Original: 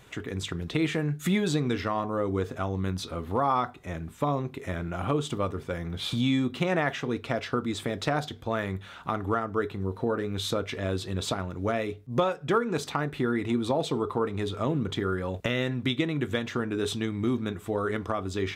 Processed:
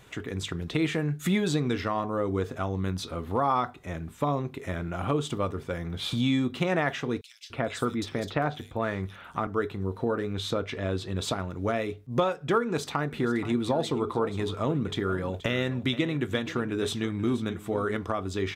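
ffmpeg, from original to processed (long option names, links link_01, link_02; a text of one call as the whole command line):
ffmpeg -i in.wav -filter_complex "[0:a]asettb=1/sr,asplit=3[link_01][link_02][link_03];[link_01]atrim=end=7.214[link_04];[link_02]atrim=start=7.21:end=9.47,asetpts=PTS-STARTPTS,afade=type=in:duration=0.004:curve=qsin,afade=type=out:start_time=2.256:duration=0.004:curve=qsin,acrossover=split=3500[link_05][link_06];[link_05]adelay=290[link_07];[link_07][link_06]amix=inputs=2:normalize=0,atrim=end_sample=99666[link_08];[link_03]atrim=start=9.466[link_09];[link_04][link_08]acrossfade=duration=0.004:curve1=hsin:curve2=qsin[link_10];[link_10][link_09]acrossfade=duration=0.004:curve1=qsin:curve2=hsin,asettb=1/sr,asplit=3[link_11][link_12][link_13];[link_11]atrim=end=10.334[link_14];[link_12]atrim=start=10.33:end=11.16,asetpts=PTS-STARTPTS,afade=type=in:duration=0.004:curve=qsin,afade=type=out:start_time=0.826:duration=0.004:curve=qsin,highshelf=frequency=7400:gain=-10[link_15];[link_13]atrim=start=11.156[link_16];[link_14][link_15]acrossfade=duration=0.004:curve1=hsin:curve2=qsin[link_17];[link_17][link_16]acrossfade=duration=0.004:curve1=qsin:curve2=hsin,asplit=3[link_18][link_19][link_20];[link_18]afade=type=out:start_time=13.1:duration=0.02[link_21];[link_19]aecho=1:1:477:0.188,afade=type=in:start_time=13.1:duration=0.02,afade=type=out:start_time=17.96:duration=0.02[link_22];[link_20]afade=type=in:start_time=17.96:duration=0.02[link_23];[link_21][link_22][link_23]amix=inputs=3:normalize=0" out.wav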